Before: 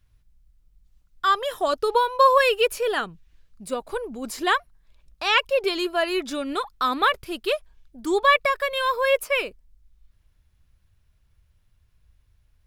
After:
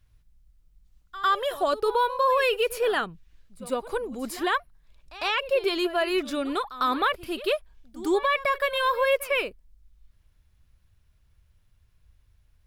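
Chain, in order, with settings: limiter -15 dBFS, peak gain reduction 9 dB; dynamic EQ 6400 Hz, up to -6 dB, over -49 dBFS, Q 1.3; pre-echo 0.102 s -16 dB

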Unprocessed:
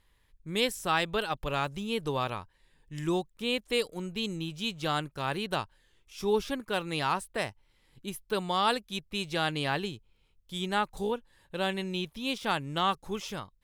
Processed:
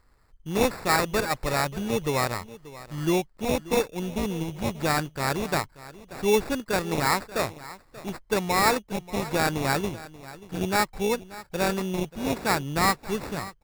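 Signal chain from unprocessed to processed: high shelf 7700 Hz -6 dB; sample-rate reducer 3100 Hz, jitter 0%; on a send: echo 0.584 s -17.5 dB; on the sum: gain +5.5 dB

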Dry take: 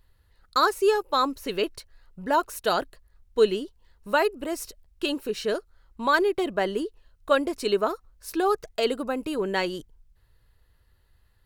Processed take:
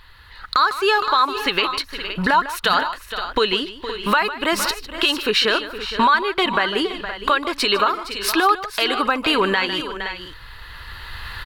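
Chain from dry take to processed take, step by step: recorder AGC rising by 9.6 dB/s; band shelf 2000 Hz +14.5 dB 2.7 oct; compressor 3:1, threshold -28 dBFS, peak gain reduction 18.5 dB; tapped delay 0.152/0.464/0.519 s -15.5/-13.5/-14 dB; maximiser +16 dB; gain -5.5 dB

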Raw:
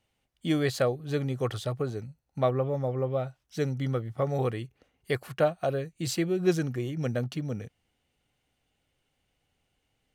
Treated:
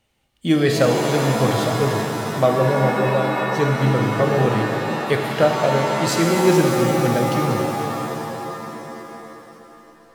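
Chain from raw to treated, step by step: shimmer reverb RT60 3.3 s, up +7 st, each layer -2 dB, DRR 1.5 dB; gain +7.5 dB

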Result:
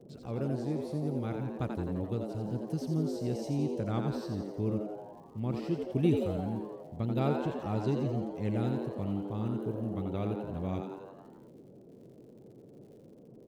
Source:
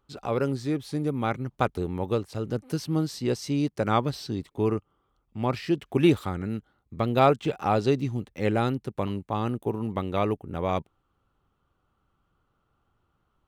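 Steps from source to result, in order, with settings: EQ curve 180 Hz 0 dB, 960 Hz -15 dB, 7100 Hz -9 dB; crackle 71/s -51 dBFS; frequency-shifting echo 86 ms, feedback 60%, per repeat +100 Hz, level -5.5 dB; band noise 110–490 Hz -50 dBFS; gain -3.5 dB

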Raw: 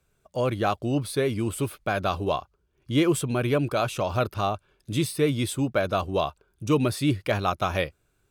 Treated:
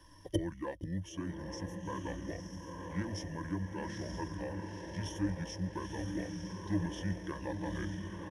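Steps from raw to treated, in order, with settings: block floating point 7-bit; on a send: diffused feedback echo 0.923 s, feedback 51%, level -3 dB; on the sum: flipped gate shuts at -26 dBFS, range -27 dB; pitch shift -7 st; ripple EQ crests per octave 1.2, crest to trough 16 dB; gain +9.5 dB

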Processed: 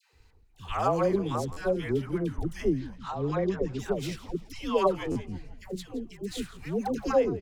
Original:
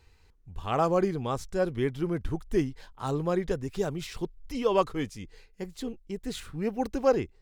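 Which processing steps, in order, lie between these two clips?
2.68–3.79 Bessel low-pass 4600 Hz, order 8; 5.03–5.63 tilt -1.5 dB/oct; dispersion lows, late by 0.135 s, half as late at 780 Hz; on a send: frequency-shifting echo 0.168 s, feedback 52%, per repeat -77 Hz, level -17 dB; on the sum: stuck buffer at 1.52/5.11, samples 512, times 3

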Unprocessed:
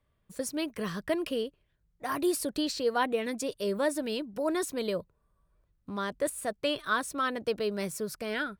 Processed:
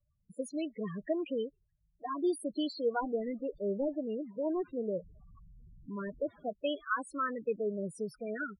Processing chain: 3–6.49 delta modulation 32 kbps, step -45 dBFS; loudest bins only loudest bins 8; gain -2.5 dB

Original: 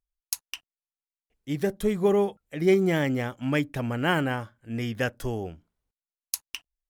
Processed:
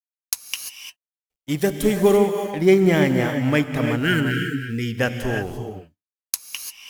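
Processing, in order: G.711 law mismatch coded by A; gate -47 dBFS, range -14 dB; 0.48–2.17 high shelf 3700 Hz +8.5 dB; 3.99–4.97 spectral delete 480–1300 Hz; non-linear reverb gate 0.37 s rising, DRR 5 dB; gain +6 dB

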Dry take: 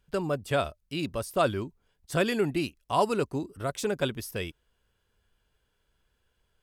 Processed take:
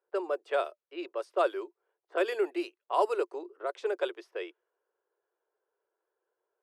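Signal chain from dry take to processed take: Chebyshev high-pass 350 Hz, order 6; high shelf 2300 Hz -10.5 dB; low-pass opened by the level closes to 1100 Hz, open at -26.5 dBFS

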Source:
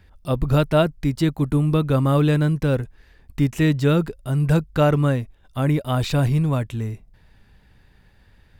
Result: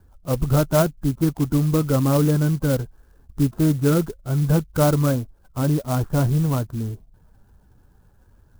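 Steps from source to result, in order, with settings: bin magnitudes rounded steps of 15 dB; steep low-pass 1600 Hz 96 dB/oct; clock jitter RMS 0.067 ms

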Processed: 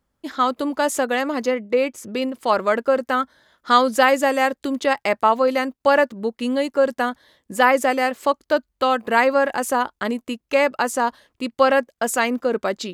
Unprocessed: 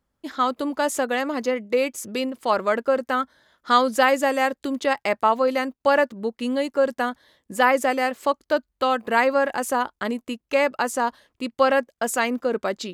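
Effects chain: 1.55–2.22 high shelf 4300 Hz -9.5 dB; gain +2.5 dB

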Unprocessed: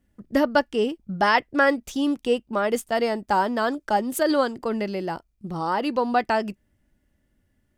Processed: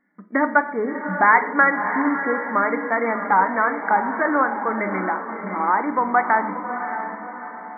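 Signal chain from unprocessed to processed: resonant low shelf 760 Hz -8 dB, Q 1.5; FFT band-pass 180–2300 Hz; in parallel at +2 dB: compressor, threshold -31 dBFS, peak gain reduction 16 dB; on the sum: diffused feedback echo 0.641 s, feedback 45%, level -8 dB; shoebox room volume 290 m³, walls mixed, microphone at 0.39 m; gain +2.5 dB

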